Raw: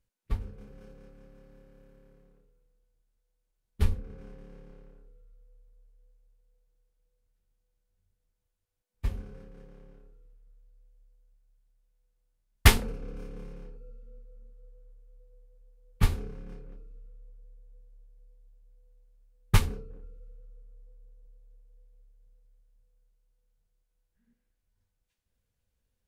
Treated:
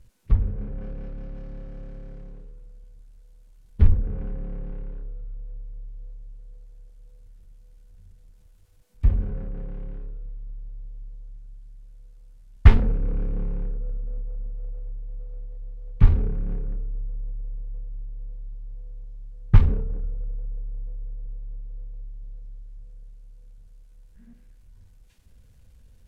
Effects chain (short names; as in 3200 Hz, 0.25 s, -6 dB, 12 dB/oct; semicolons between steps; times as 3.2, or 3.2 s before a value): power-law curve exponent 0.7; low shelf 220 Hz +12 dB; treble ducked by the level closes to 2100 Hz, closed at -22 dBFS; gain -5.5 dB